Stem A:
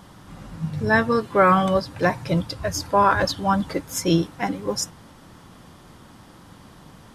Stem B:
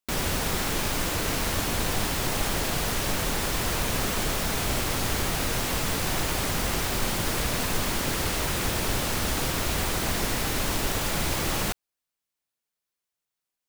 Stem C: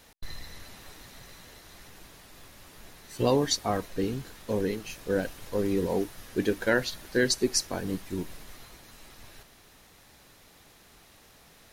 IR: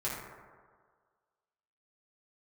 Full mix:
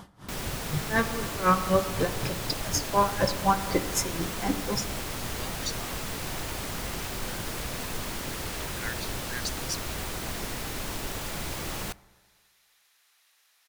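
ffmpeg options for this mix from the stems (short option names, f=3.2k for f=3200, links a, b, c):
-filter_complex "[0:a]acompressor=threshold=-22dB:ratio=2,aeval=exprs='val(0)*pow(10,-24*(0.5-0.5*cos(2*PI*4*n/s))/20)':c=same,volume=1dB,asplit=2[a][b];[b]volume=-12.5dB[c];[1:a]adelay=200,volume=-7.5dB,asplit=2[d][e];[e]volume=-24dB[f];[2:a]highpass=1.4k,adelay=2150,volume=-7dB[g];[3:a]atrim=start_sample=2205[h];[c][f]amix=inputs=2:normalize=0[i];[i][h]afir=irnorm=-1:irlink=0[j];[a][d][g][j]amix=inputs=4:normalize=0"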